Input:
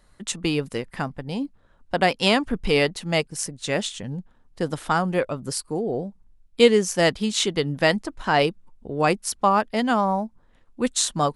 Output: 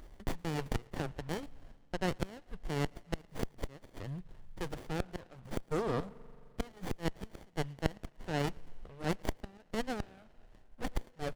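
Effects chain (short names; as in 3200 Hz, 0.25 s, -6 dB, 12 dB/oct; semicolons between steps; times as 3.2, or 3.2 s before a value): passive tone stack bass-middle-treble 10-0-10; reverse; compressor 6:1, threshold -39 dBFS, peak gain reduction 18 dB; reverse; chopper 1.4 Hz, depth 60%, duty 40%; flipped gate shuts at -33 dBFS, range -26 dB; outdoor echo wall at 19 m, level -28 dB; on a send at -20 dB: reverb RT60 2.6 s, pre-delay 43 ms; on the sum: running maximum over 33 samples; gain +15.5 dB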